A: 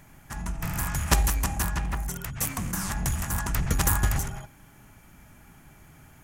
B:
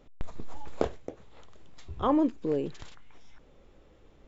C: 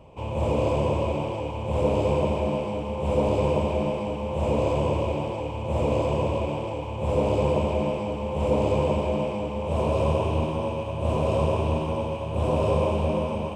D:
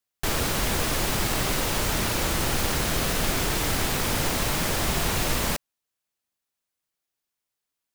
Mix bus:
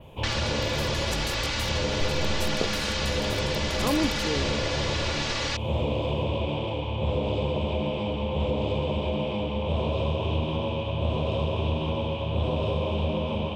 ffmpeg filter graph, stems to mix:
-filter_complex "[0:a]volume=-10dB[a];[1:a]adelay=1800,volume=-4.5dB[b];[2:a]lowpass=f=3.5k:t=q:w=5.6,volume=-1.5dB[c];[3:a]lowpass=f=4.6k:w=0.5412,lowpass=f=4.6k:w=1.3066,tiltshelf=f=740:g=-9.5,aecho=1:1:3.5:0.78,volume=-4.5dB[d];[a][c][d]amix=inputs=3:normalize=0,adynamicequalizer=threshold=0.00447:dfrequency=7100:dqfactor=1.1:tfrequency=7100:tqfactor=1.1:attack=5:release=100:ratio=0.375:range=3.5:mode=boostabove:tftype=bell,acompressor=threshold=-26dB:ratio=6,volume=0dB[e];[b][e]amix=inputs=2:normalize=0,lowshelf=f=340:g=5.5"

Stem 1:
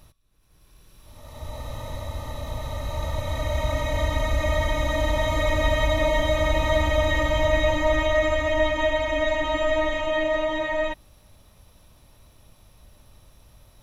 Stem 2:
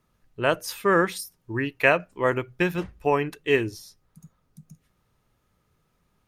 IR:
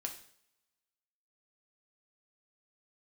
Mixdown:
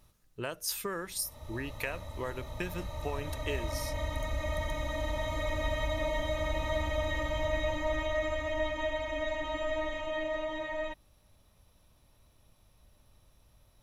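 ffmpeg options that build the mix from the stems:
-filter_complex "[0:a]volume=-10.5dB[a];[1:a]acompressor=threshold=-29dB:ratio=6,bass=f=250:g=0,treble=f=4k:g=11,volume=-5.5dB[b];[a][b]amix=inputs=2:normalize=0"

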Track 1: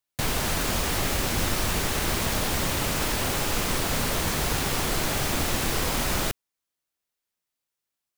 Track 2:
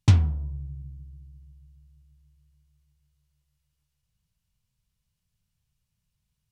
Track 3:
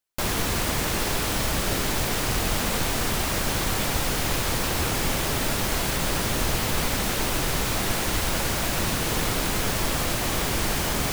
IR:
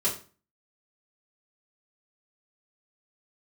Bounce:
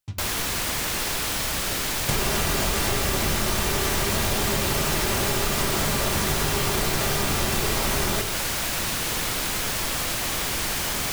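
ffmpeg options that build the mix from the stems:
-filter_complex "[0:a]adelay=1900,volume=3dB,asplit=2[a][b];[b]volume=-8dB[c];[1:a]tremolo=f=9.7:d=0.73,volume=-17.5dB,asplit=2[d][e];[e]volume=-17.5dB[f];[2:a]tiltshelf=f=970:g=-4,volume=-2dB[g];[3:a]atrim=start_sample=2205[h];[c][f]amix=inputs=2:normalize=0[i];[i][h]afir=irnorm=-1:irlink=0[j];[a][d][g][j]amix=inputs=4:normalize=0,acompressor=threshold=-20dB:ratio=6"

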